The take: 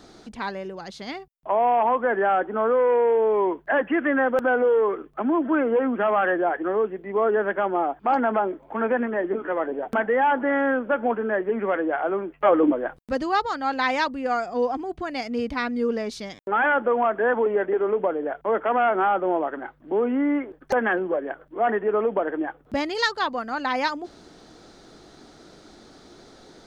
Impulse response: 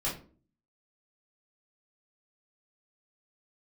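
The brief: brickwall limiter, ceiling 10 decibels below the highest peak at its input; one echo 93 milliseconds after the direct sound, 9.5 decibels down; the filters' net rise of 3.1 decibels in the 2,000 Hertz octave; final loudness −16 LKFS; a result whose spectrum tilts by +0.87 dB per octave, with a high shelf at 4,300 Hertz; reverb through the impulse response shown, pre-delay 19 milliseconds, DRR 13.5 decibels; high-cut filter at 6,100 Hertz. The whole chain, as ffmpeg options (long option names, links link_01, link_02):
-filter_complex "[0:a]lowpass=6100,equalizer=frequency=2000:width_type=o:gain=5.5,highshelf=frequency=4300:gain=-7.5,alimiter=limit=-16.5dB:level=0:latency=1,aecho=1:1:93:0.335,asplit=2[link_01][link_02];[1:a]atrim=start_sample=2205,adelay=19[link_03];[link_02][link_03]afir=irnorm=-1:irlink=0,volume=-19dB[link_04];[link_01][link_04]amix=inputs=2:normalize=0,volume=9dB"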